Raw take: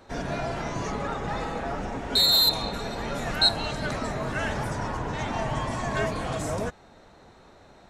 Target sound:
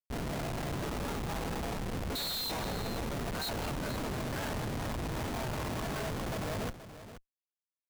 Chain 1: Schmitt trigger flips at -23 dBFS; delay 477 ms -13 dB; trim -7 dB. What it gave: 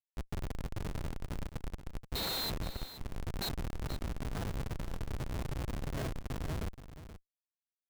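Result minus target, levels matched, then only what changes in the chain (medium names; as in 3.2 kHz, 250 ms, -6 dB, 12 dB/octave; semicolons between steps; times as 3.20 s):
Schmitt trigger: distortion +8 dB
change: Schmitt trigger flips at -31 dBFS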